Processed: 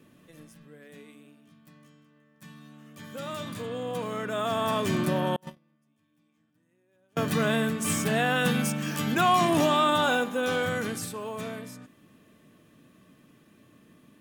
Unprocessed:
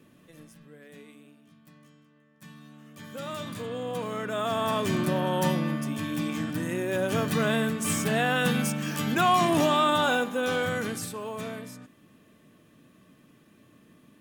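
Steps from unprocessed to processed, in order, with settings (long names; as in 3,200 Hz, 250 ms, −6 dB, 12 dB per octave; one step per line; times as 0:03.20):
0:05.36–0:07.17: noise gate −20 dBFS, range −40 dB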